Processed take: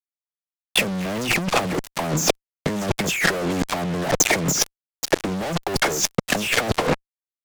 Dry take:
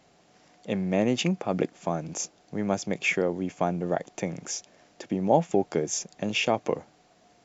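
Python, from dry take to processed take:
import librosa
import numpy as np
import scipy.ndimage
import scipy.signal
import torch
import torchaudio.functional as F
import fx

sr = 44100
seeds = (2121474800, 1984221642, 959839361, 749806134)

y = fx.dispersion(x, sr, late='lows', ms=133.0, hz=3000.0)
y = fx.fuzz(y, sr, gain_db=43.0, gate_db=-42.0)
y = fx.over_compress(y, sr, threshold_db=-20.0, ratio=-0.5)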